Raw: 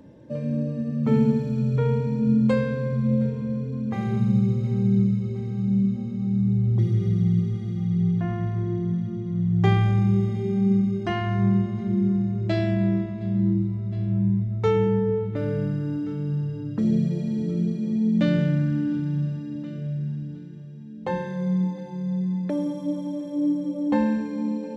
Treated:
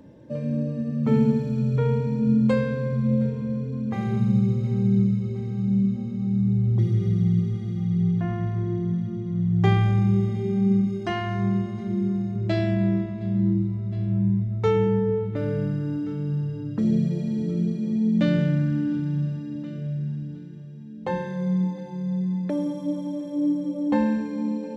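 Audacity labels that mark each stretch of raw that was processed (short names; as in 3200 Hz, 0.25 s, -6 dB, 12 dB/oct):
10.870000	12.360000	tone controls bass -4 dB, treble +4 dB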